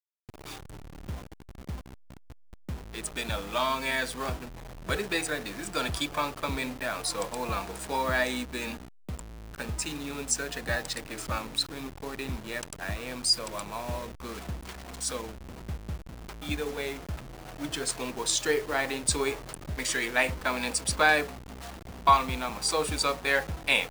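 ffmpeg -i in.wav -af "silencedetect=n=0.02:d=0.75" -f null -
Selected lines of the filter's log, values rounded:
silence_start: 1.76
silence_end: 2.69 | silence_duration: 0.93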